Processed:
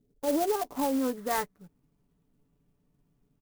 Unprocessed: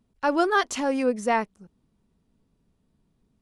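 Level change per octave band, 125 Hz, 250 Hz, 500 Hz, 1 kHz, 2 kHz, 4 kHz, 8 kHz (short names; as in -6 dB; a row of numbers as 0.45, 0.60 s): n/a, -3.5 dB, -5.0 dB, -6.5 dB, -12.5 dB, -7.0 dB, -1.5 dB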